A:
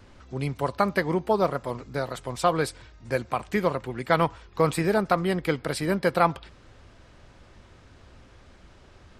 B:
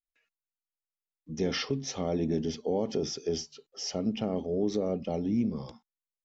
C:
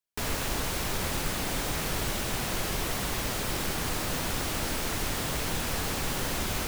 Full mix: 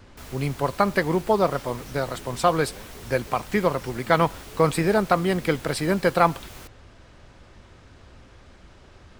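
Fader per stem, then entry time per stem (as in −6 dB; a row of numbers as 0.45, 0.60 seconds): +2.5, −18.0, −12.0 decibels; 0.00, 0.00, 0.00 seconds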